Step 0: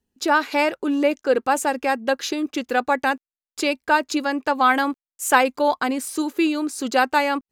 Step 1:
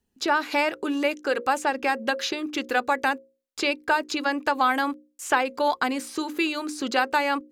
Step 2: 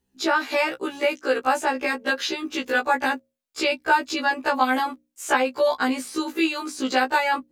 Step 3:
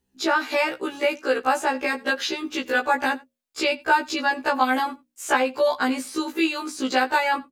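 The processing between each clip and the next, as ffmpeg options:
-filter_complex "[0:a]acrossover=split=880|5400[a][b][c];[a]acompressor=threshold=-28dB:ratio=4[d];[b]acompressor=threshold=-24dB:ratio=4[e];[c]acompressor=threshold=-47dB:ratio=4[f];[d][e][f]amix=inputs=3:normalize=0,bandreject=f=60:t=h:w=6,bandreject=f=120:t=h:w=6,bandreject=f=180:t=h:w=6,bandreject=f=240:t=h:w=6,bandreject=f=300:t=h:w=6,bandreject=f=360:t=h:w=6,bandreject=f=420:t=h:w=6,bandreject=f=480:t=h:w=6,bandreject=f=540:t=h:w=6,volume=2dB"
-af "afftfilt=real='re*1.73*eq(mod(b,3),0)':imag='im*1.73*eq(mod(b,3),0)':win_size=2048:overlap=0.75,volume=4dB"
-af "aecho=1:1:88:0.0668"

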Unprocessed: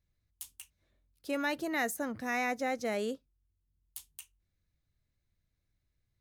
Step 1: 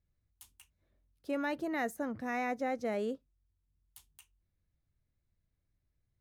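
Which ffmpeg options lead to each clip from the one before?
-af "highshelf=f=2.2k:g=-11.5"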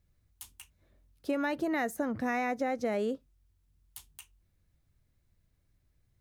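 -af "acompressor=threshold=-36dB:ratio=6,volume=8.5dB"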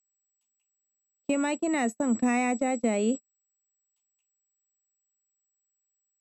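-af "aeval=exprs='val(0)+0.01*sin(2*PI*7800*n/s)':c=same,highpass=f=190:w=0.5412,highpass=f=190:w=1.3066,equalizer=f=230:t=q:w=4:g=9,equalizer=f=1.6k:t=q:w=4:g=-8,equalizer=f=2.6k:t=q:w=4:g=8,equalizer=f=9.3k:t=q:w=4:g=-9,lowpass=f=9.9k:w=0.5412,lowpass=f=9.9k:w=1.3066,agate=range=-38dB:threshold=-31dB:ratio=16:detection=peak,volume=3dB"

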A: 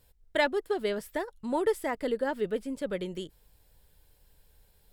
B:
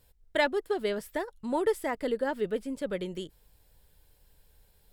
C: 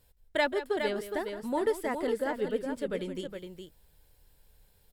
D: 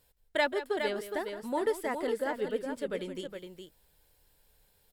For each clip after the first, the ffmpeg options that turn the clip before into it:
-af anull
-af "aecho=1:1:168|414:0.224|0.447,volume=-1.5dB"
-af "lowshelf=f=200:g=-8"

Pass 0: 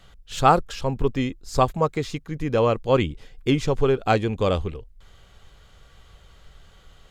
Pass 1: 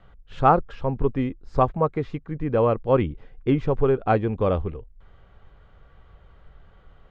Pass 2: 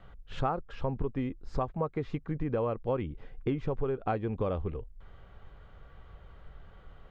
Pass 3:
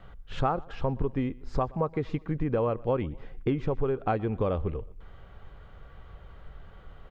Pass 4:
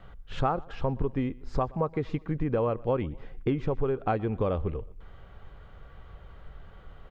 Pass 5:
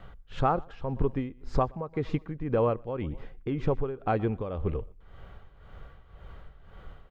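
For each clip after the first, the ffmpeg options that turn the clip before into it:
-af "lowpass=1.6k"
-af "acompressor=threshold=-28dB:ratio=6"
-af "aecho=1:1:122|244|366:0.0668|0.0348|0.0181,volume=3.5dB"
-af anull
-af "tremolo=f=1.9:d=0.71,volume=2.5dB"

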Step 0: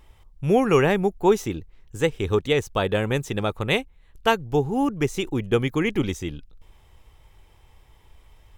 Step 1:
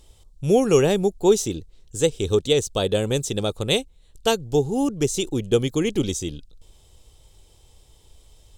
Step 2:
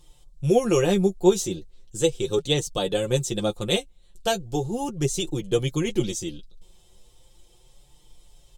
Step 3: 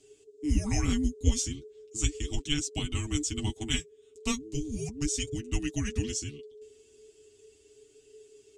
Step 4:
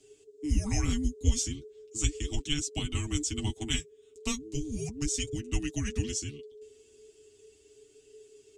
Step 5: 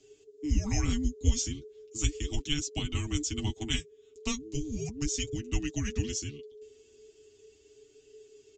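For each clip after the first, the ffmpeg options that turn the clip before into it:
-af "equalizer=f=500:t=o:w=1:g=4,equalizer=f=1k:t=o:w=1:g=-6,equalizer=f=2k:t=o:w=1:g=-10,equalizer=f=4k:t=o:w=1:g=8,equalizer=f=8k:t=o:w=1:g=12"
-af "aecho=1:1:5.7:0.68,flanger=delay=6.6:depth=4.3:regen=24:speed=0.37:shape=sinusoidal"
-af "afreqshift=-440,lowpass=f=7.9k:t=q:w=2.2,volume=-6.5dB"
-filter_complex "[0:a]acrossover=split=140|3000[a][b][c];[b]acompressor=threshold=-31dB:ratio=6[d];[a][d][c]amix=inputs=3:normalize=0"
-af "aresample=16000,aresample=44100"

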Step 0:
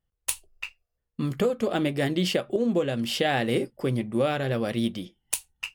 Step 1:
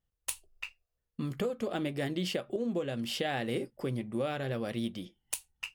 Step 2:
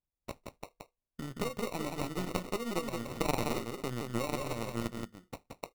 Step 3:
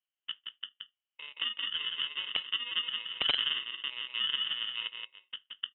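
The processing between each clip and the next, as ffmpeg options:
-af "acompressor=threshold=-34dB:ratio=1.5,volume=-3.5dB"
-af "acrusher=samples=27:mix=1:aa=0.000001,aeval=exprs='0.168*(cos(1*acos(clip(val(0)/0.168,-1,1)))-cos(1*PI/2))+0.075*(cos(2*acos(clip(val(0)/0.168,-1,1)))-cos(2*PI/2))+0.0168*(cos(7*acos(clip(val(0)/0.168,-1,1)))-cos(7*PI/2))':c=same,aecho=1:1:174:0.596"
-af "highpass=f=1k:t=q:w=4.7,aeval=exprs='(mod(5.31*val(0)+1,2)-1)/5.31':c=same,lowpass=f=3.4k:t=q:w=0.5098,lowpass=f=3.4k:t=q:w=0.6013,lowpass=f=3.4k:t=q:w=0.9,lowpass=f=3.4k:t=q:w=2.563,afreqshift=-4000"

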